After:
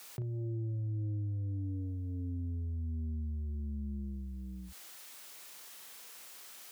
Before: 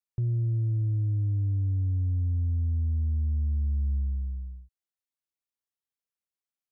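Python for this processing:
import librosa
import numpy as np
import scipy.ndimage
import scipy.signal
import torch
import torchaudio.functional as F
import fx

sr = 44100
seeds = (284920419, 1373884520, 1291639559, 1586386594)

y = scipy.signal.sosfilt(scipy.signal.butter(2, 130.0, 'highpass', fs=sr, output='sos'), x)
y = fx.low_shelf(y, sr, hz=300.0, db=-11.5)
y = fx.doubler(y, sr, ms=38.0, db=-7.0)
y = fx.env_flatten(y, sr, amount_pct=70)
y = F.gain(torch.from_numpy(y), 3.0).numpy()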